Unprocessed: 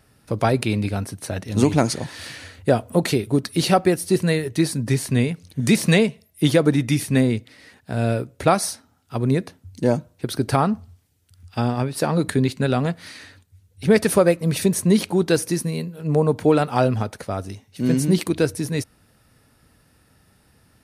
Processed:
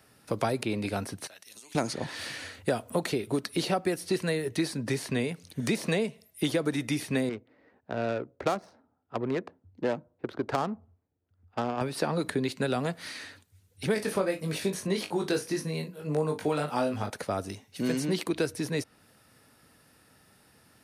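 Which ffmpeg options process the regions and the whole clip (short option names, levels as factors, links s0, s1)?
-filter_complex "[0:a]asettb=1/sr,asplit=3[s0][s1][s2];[s0]atrim=end=1.274[s3];[s1]atrim=start=1.27:end=1.75,asetpts=PTS-STARTPTS,afade=t=in:d=0.004:c=qsin,afade=t=out:st=0.476:d=0.004:c=qsin,aderivative,acompressor=threshold=0.00631:ratio=16:attack=3.2:release=140:knee=1:detection=peak[s4];[s2]atrim=start=1.746[s5];[s3][s4]acrossfade=d=0.004:c1=hsin:c2=qsin[s6];[s6][s5]acrossfade=d=0.004:c1=qsin:c2=hsin,asettb=1/sr,asplit=3[s7][s8][s9];[s7]atrim=end=7.294[s10];[s8]atrim=start=7.29:end=11.81,asetpts=PTS-STARTPTS,afade=t=in:d=0.004:c=qsin,afade=t=out:st=4.516:d=0.004:c=qsin,lowpass=7700,equalizer=f=140:t=o:w=2.1:g=-9,adynamicsmooth=sensitivity=1.5:basefreq=680[s11];[s9]atrim=start=11.806[s12];[s10][s11]acrossfade=d=0.004:c1=hsin:c2=qsin[s13];[s13][s12]acrossfade=d=0.004:c1=qsin:c2=hsin,asettb=1/sr,asplit=3[s14][s15][s16];[s14]atrim=end=13.944[s17];[s15]atrim=start=13.94:end=17.1,asetpts=PTS-STARTPTS,afade=t=in:d=0.004:c=qsin,afade=t=out:st=3.156:d=0.004:c=qsin,flanger=delay=19:depth=2.1:speed=1.7,asplit=2[s18][s19];[s19]adelay=39,volume=0.251[s20];[s18][s20]amix=inputs=2:normalize=0,atrim=end_sample=139356[s21];[s16]atrim=start=17.096[s22];[s17][s21]acrossfade=d=0.004:c1=hsin:c2=qsin[s23];[s23][s22]acrossfade=d=0.004:c1=qsin:c2=hsin,highpass=f=240:p=1,acrossover=split=340|1000|5200[s24][s25][s26][s27];[s24]acompressor=threshold=0.0251:ratio=4[s28];[s25]acompressor=threshold=0.0316:ratio=4[s29];[s26]acompressor=threshold=0.0158:ratio=4[s30];[s27]acompressor=threshold=0.00562:ratio=4[s31];[s28][s29][s30][s31]amix=inputs=4:normalize=0"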